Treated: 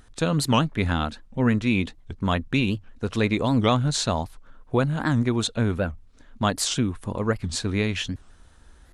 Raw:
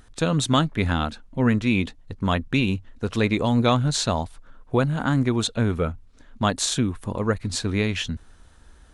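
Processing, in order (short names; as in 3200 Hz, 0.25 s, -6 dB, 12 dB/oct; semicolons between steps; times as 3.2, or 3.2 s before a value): record warp 78 rpm, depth 250 cents; gain -1 dB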